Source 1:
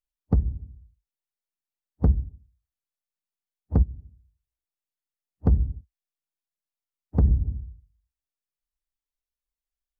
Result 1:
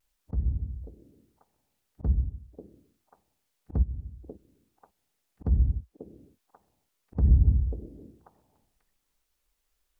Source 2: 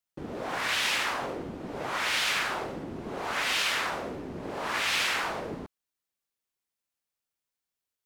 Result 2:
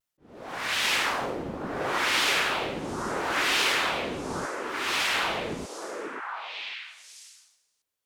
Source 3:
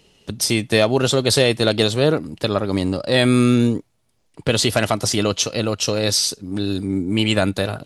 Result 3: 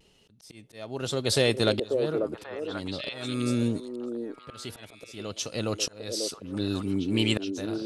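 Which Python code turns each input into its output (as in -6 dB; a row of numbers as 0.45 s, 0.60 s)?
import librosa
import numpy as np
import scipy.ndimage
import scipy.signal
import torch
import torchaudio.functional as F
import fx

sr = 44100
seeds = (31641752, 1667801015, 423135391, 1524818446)

y = fx.vibrato(x, sr, rate_hz=0.45, depth_cents=21.0)
y = fx.auto_swell(y, sr, attack_ms=763.0)
y = fx.echo_stepped(y, sr, ms=540, hz=420.0, octaves=1.4, feedback_pct=70, wet_db=-1.0)
y = y * 10.0 ** (-30 / 20.0) / np.sqrt(np.mean(np.square(y)))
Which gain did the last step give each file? +14.5 dB, +3.0 dB, -6.5 dB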